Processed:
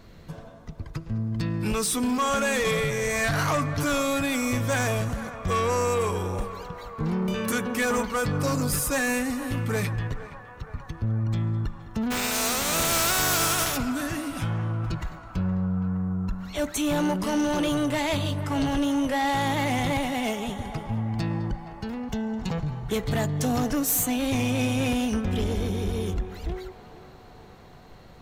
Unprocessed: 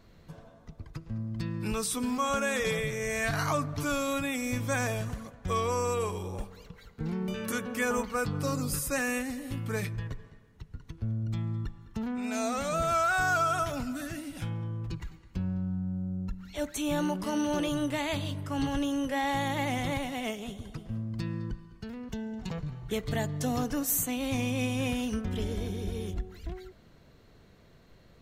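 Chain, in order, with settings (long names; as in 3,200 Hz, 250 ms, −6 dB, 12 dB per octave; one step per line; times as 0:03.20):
0:12.10–0:13.76: compressing power law on the bin magnitudes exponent 0.35
soft clipping −27.5 dBFS, distortion −13 dB
feedback echo with a band-pass in the loop 468 ms, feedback 81%, band-pass 980 Hz, level −12 dB
level +8 dB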